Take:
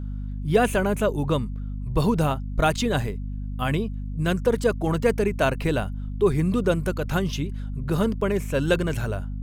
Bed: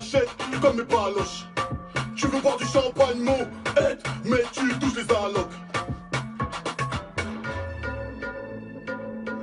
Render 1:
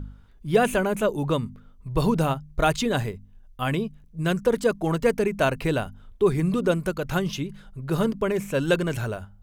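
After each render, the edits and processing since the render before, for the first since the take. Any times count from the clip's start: de-hum 50 Hz, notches 5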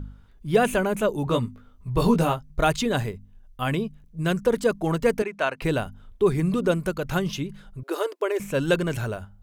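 1.25–2.50 s: doubling 17 ms -3 dB; 5.22–5.62 s: band-pass filter 1.6 kHz, Q 0.53; 7.83–8.40 s: brick-wall FIR high-pass 300 Hz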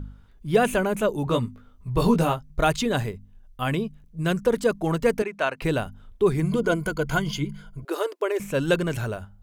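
6.42–7.85 s: rippled EQ curve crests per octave 1.8, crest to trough 12 dB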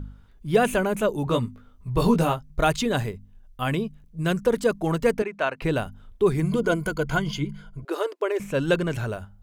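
5.11–5.76 s: treble shelf 5.5 kHz -8 dB; 7.04–9.08 s: treble shelf 7.5 kHz -7.5 dB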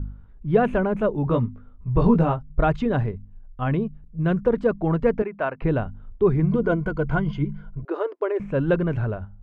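low-pass 1.6 kHz 12 dB/octave; bass shelf 180 Hz +7 dB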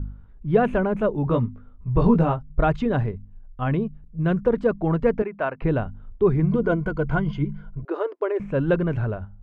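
no audible change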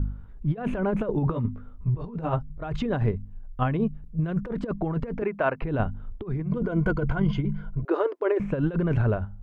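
compressor with a negative ratio -24 dBFS, ratio -0.5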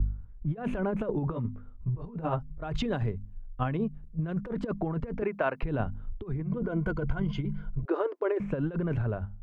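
compression 5:1, threshold -26 dBFS, peak gain reduction 8 dB; three bands expanded up and down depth 70%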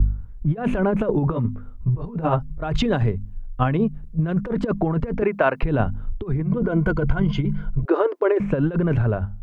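trim +9.5 dB

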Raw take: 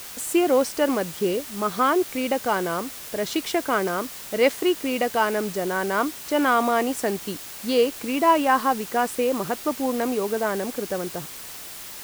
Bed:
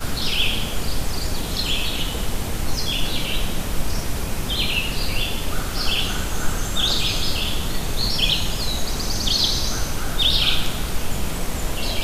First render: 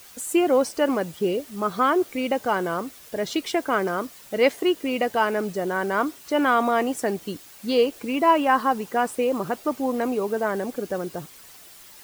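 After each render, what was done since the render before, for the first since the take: noise reduction 10 dB, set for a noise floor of -38 dBFS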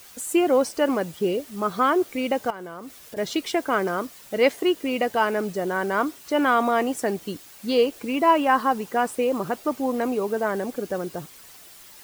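2.50–3.17 s: compression 5:1, threshold -34 dBFS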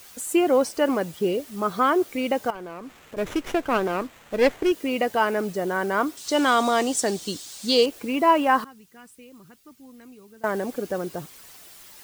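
2.55–4.72 s: sliding maximum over 9 samples; 6.17–7.86 s: high-order bell 5.4 kHz +11.5 dB; 8.64–10.44 s: amplifier tone stack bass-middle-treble 6-0-2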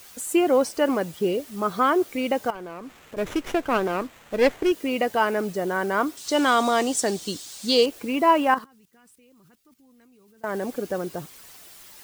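8.54–10.62 s: level held to a coarse grid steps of 14 dB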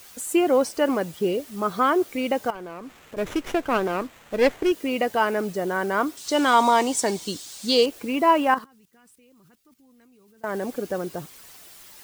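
6.53–7.24 s: small resonant body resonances 950/2200 Hz, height 13 dB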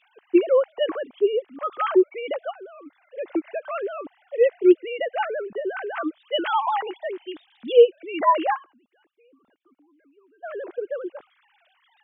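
formants replaced by sine waves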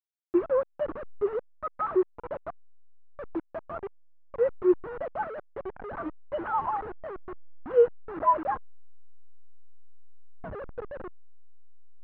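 send-on-delta sampling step -24.5 dBFS; four-pole ladder low-pass 1.6 kHz, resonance 35%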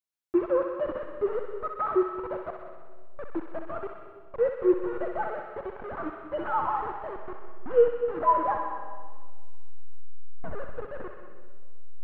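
thinning echo 63 ms, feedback 79%, high-pass 1 kHz, level -4 dB; algorithmic reverb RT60 1.6 s, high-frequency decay 0.35×, pre-delay 110 ms, DRR 10 dB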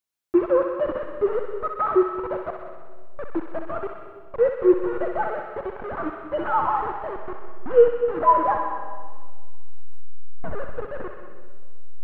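trim +5.5 dB

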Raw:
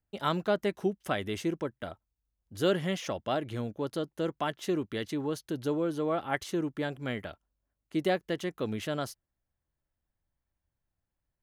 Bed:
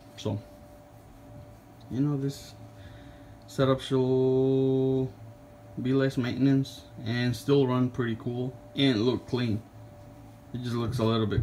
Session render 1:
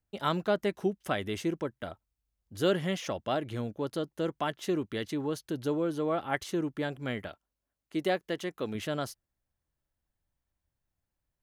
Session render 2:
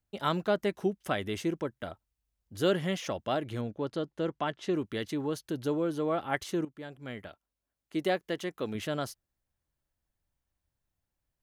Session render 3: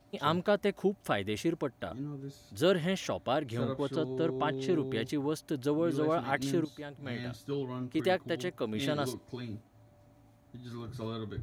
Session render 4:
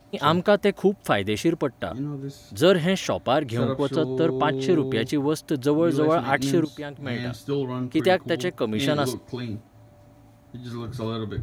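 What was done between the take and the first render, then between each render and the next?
7.28–8.75 s: bass shelf 150 Hz -9 dB
3.61–4.74 s: distance through air 76 m; 6.65–7.96 s: fade in, from -14 dB
add bed -12.5 dB
trim +9 dB

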